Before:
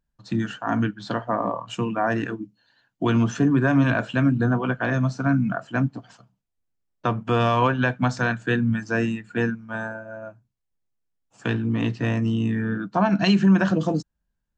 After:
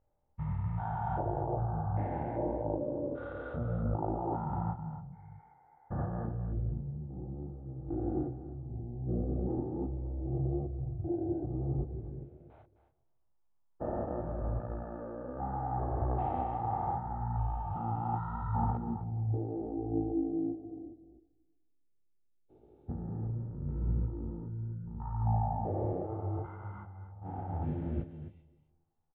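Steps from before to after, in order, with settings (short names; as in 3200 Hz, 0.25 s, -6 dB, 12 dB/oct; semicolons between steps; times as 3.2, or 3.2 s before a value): stepped spectrum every 0.2 s; high shelf 3500 Hz +8.5 dB; negative-ratio compressor -27 dBFS, ratio -0.5; limiter -21.5 dBFS, peak gain reduction 10.5 dB; LFO low-pass square 0.16 Hz 780–1900 Hz; echo 0.13 s -11.5 dB; on a send at -23 dB: reverb RT60 0.65 s, pre-delay 0.117 s; on the sum: speed mistake 15 ips tape played at 7.5 ips; detuned doubles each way 26 cents; gain -1.5 dB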